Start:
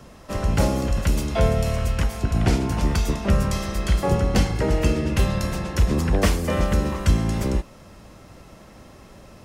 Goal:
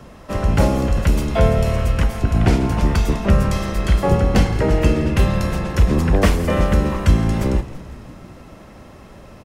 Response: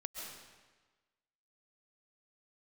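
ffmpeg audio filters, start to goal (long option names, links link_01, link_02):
-filter_complex "[0:a]asplit=8[link_01][link_02][link_03][link_04][link_05][link_06][link_07][link_08];[link_02]adelay=167,afreqshift=-59,volume=-17dB[link_09];[link_03]adelay=334,afreqshift=-118,volume=-20.7dB[link_10];[link_04]adelay=501,afreqshift=-177,volume=-24.5dB[link_11];[link_05]adelay=668,afreqshift=-236,volume=-28.2dB[link_12];[link_06]adelay=835,afreqshift=-295,volume=-32dB[link_13];[link_07]adelay=1002,afreqshift=-354,volume=-35.7dB[link_14];[link_08]adelay=1169,afreqshift=-413,volume=-39.5dB[link_15];[link_01][link_09][link_10][link_11][link_12][link_13][link_14][link_15]amix=inputs=8:normalize=0,asplit=2[link_16][link_17];[1:a]atrim=start_sample=2205,atrim=end_sample=3528,lowpass=3900[link_18];[link_17][link_18]afir=irnorm=-1:irlink=0,volume=1dB[link_19];[link_16][link_19]amix=inputs=2:normalize=0"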